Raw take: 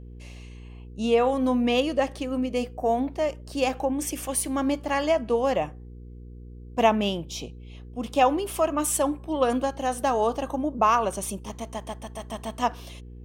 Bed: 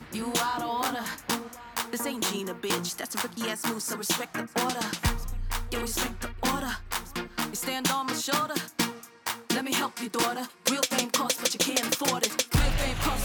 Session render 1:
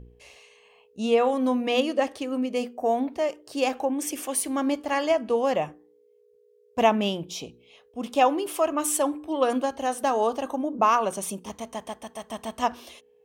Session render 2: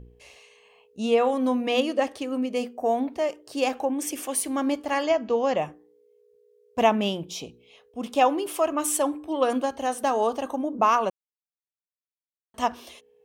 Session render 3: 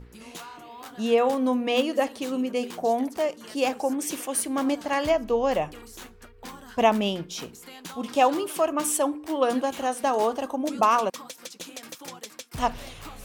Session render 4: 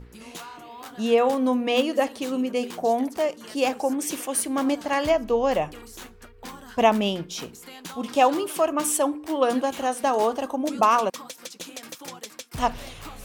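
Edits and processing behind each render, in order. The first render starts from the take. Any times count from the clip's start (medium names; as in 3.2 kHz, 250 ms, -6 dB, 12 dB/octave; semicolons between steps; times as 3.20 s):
de-hum 60 Hz, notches 6
5.03–5.58 s: brick-wall FIR low-pass 7.4 kHz; 11.10–12.54 s: mute
add bed -14 dB
trim +1.5 dB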